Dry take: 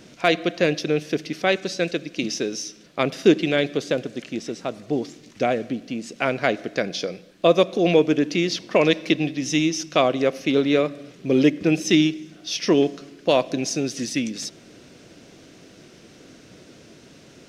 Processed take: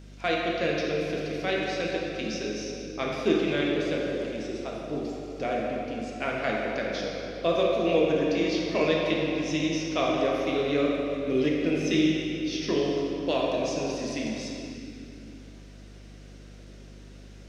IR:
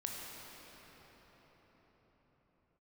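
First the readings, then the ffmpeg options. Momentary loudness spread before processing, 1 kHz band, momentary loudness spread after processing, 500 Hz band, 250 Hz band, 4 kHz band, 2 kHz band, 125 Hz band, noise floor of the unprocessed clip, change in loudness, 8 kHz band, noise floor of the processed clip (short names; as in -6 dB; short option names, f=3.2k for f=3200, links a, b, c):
11 LU, -4.5 dB, 10 LU, -4.5 dB, -5.5 dB, -6.0 dB, -5.0 dB, -5.5 dB, -49 dBFS, -5.5 dB, -10.0 dB, -46 dBFS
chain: -filter_complex "[0:a]acrossover=split=6400[a][b];[b]acompressor=threshold=-50dB:ratio=4:attack=1:release=60[c];[a][c]amix=inputs=2:normalize=0[d];[1:a]atrim=start_sample=2205,asetrate=88200,aresample=44100[e];[d][e]afir=irnorm=-1:irlink=0,aeval=exprs='val(0)+0.00794*(sin(2*PI*50*n/s)+sin(2*PI*2*50*n/s)/2+sin(2*PI*3*50*n/s)/3+sin(2*PI*4*50*n/s)/4+sin(2*PI*5*50*n/s)/5)':c=same,lowshelf=f=340:g=-4"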